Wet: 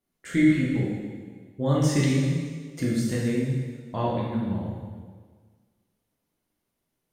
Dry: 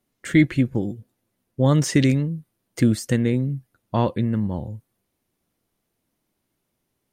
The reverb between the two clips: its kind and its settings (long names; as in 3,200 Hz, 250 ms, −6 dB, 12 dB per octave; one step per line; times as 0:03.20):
dense smooth reverb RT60 1.6 s, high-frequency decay 0.95×, DRR −5.5 dB
level −10 dB